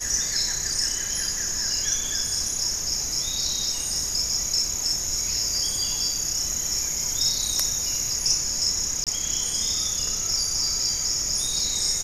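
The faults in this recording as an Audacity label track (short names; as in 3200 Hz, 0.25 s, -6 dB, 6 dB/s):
9.040000	9.070000	gap 27 ms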